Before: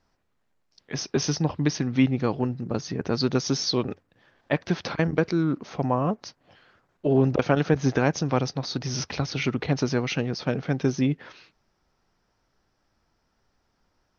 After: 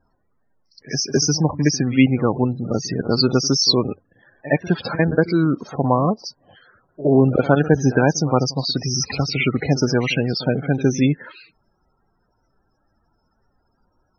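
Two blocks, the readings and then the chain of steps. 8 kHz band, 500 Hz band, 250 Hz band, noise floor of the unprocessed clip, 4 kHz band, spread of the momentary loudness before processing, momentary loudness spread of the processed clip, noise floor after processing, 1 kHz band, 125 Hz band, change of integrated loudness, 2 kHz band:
can't be measured, +6.5 dB, +6.0 dB, −72 dBFS, +9.5 dB, 8 LU, 8 LU, −67 dBFS, +6.0 dB, +6.0 dB, +6.5 dB, +6.5 dB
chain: spectral peaks only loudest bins 32
high-shelf EQ 2,200 Hz +7 dB
echo ahead of the sound 64 ms −16 dB
level +6 dB

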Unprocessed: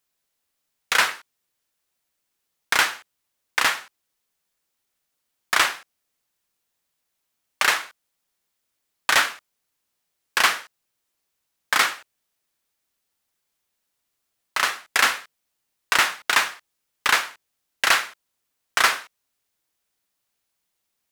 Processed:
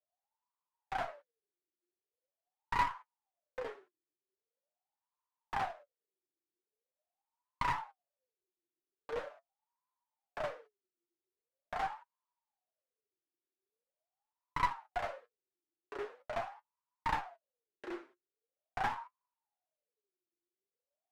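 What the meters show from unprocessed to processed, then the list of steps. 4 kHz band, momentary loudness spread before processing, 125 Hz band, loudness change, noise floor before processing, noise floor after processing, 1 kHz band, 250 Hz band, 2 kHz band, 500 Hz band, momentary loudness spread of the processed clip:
−28.5 dB, 13 LU, can't be measured, −18.0 dB, −78 dBFS, below −85 dBFS, −11.5 dB, −8.5 dB, −23.5 dB, −7.0 dB, 17 LU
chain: LFO wah 0.43 Hz 340–1,000 Hz, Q 18
asymmetric clip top −46 dBFS
flanger 0.76 Hz, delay 6.4 ms, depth 2.5 ms, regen +46%
level +11 dB

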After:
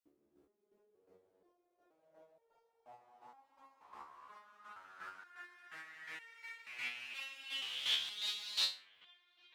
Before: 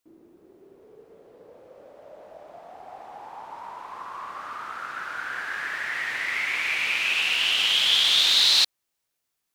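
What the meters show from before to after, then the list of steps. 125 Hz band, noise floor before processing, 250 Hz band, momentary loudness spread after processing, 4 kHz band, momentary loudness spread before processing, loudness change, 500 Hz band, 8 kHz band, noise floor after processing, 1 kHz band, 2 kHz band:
can't be measured, −80 dBFS, −19.0 dB, 21 LU, −18.5 dB, 22 LU, −18.5 dB, −20.5 dB, −19.5 dB, −80 dBFS, −20.0 dB, −21.0 dB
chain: square-wave tremolo 2.8 Hz, depth 65%, duty 25%
delay with a low-pass on its return 1,156 ms, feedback 50%, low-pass 2,300 Hz, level −17 dB
step-sequenced resonator 2.1 Hz 72–460 Hz
level −4.5 dB

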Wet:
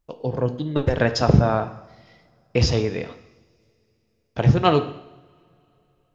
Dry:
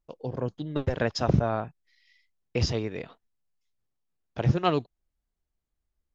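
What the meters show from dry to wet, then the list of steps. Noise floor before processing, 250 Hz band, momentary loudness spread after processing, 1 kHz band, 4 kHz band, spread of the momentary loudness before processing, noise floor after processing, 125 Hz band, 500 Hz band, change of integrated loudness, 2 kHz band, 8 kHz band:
−84 dBFS, +7.0 dB, 16 LU, +7.0 dB, +7.0 dB, 15 LU, −69 dBFS, +7.5 dB, +7.5 dB, +7.0 dB, +7.5 dB, can't be measured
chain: coupled-rooms reverb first 0.81 s, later 3.5 s, from −25 dB, DRR 8.5 dB
level +6.5 dB

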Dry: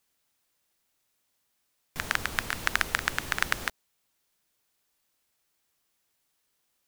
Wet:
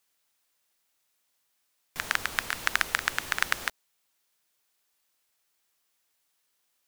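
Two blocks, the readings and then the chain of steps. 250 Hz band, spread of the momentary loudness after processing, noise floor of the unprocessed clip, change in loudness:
−5.0 dB, 9 LU, −76 dBFS, +0.5 dB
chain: low-shelf EQ 380 Hz −9 dB
level +1 dB

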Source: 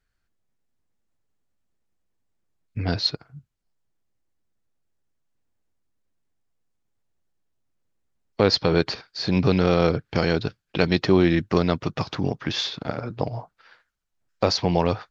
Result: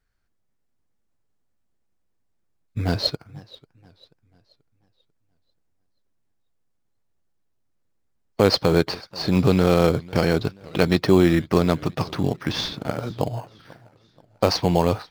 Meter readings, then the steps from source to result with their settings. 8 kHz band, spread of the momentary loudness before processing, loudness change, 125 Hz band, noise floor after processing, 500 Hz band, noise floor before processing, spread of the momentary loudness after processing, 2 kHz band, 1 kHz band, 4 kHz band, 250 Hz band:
can't be measured, 12 LU, +1.5 dB, +2.0 dB, −70 dBFS, +2.0 dB, −76 dBFS, 11 LU, 0.0 dB, +1.5 dB, −0.5 dB, +2.0 dB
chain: in parallel at −7.5 dB: decimation without filtering 12×
on the sum: feedback echo with a swinging delay time 487 ms, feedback 42%, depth 191 cents, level −22.5 dB
level −1 dB

